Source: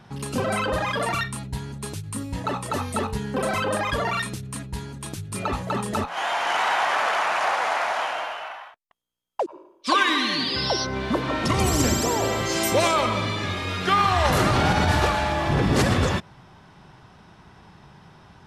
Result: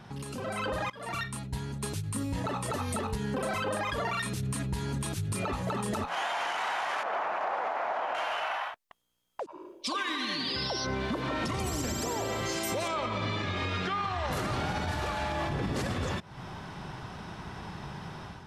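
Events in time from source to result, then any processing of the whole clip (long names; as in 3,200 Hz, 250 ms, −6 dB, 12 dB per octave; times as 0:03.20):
0:00.90–0:03.93: fade in, from −22.5 dB
0:07.03–0:08.15: resonant band-pass 390 Hz, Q 0.55
0:09.42–0:09.96: parametric band 300 Hz → 2,100 Hz −12.5 dB 0.66 octaves
0:12.88–0:14.31: high-frequency loss of the air 78 metres
whole clip: downward compressor 12 to 1, threshold −35 dBFS; brickwall limiter −31 dBFS; automatic gain control gain up to 8 dB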